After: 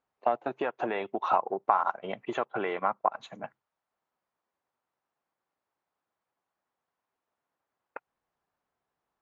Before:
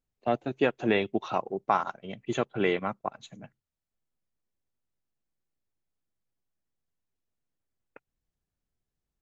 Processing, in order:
in parallel at +2 dB: brickwall limiter −21 dBFS, peak gain reduction 11.5 dB
on the sum: downward compressor 6 to 1, threshold −27 dBFS, peak gain reduction 11.5 dB
resonant band-pass 970 Hz, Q 1.6
level +9 dB

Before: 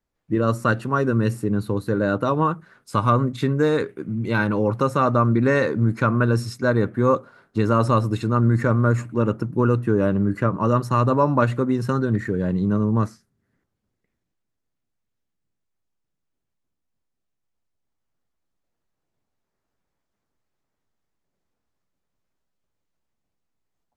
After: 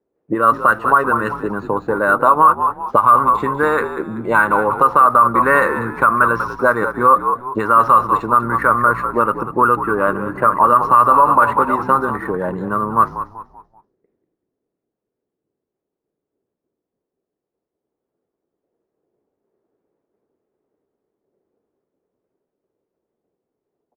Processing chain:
0:09.83–0:12.13: delay that plays each chunk backwards 217 ms, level −12.5 dB
envelope filter 410–1,200 Hz, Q 3, up, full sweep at −16 dBFS
echo with shifted repeats 192 ms, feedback 36%, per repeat −62 Hz, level −11 dB
boost into a limiter +19.5 dB
linearly interpolated sample-rate reduction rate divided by 4×
level −1 dB

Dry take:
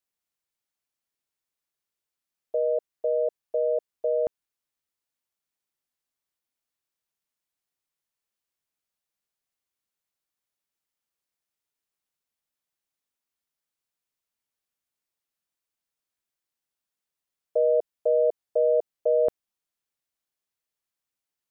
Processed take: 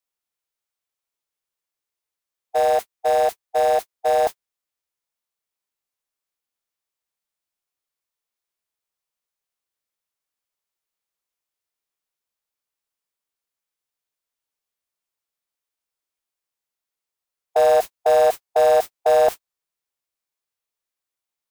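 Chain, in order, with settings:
converter with a step at zero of −29.5 dBFS
noise gate −25 dBFS, range −54 dB
graphic EQ with 10 bands 125 Hz −4 dB, 250 Hz −4 dB, 500 Hz +3 dB
formants moved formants +5 semitones
level +3.5 dB

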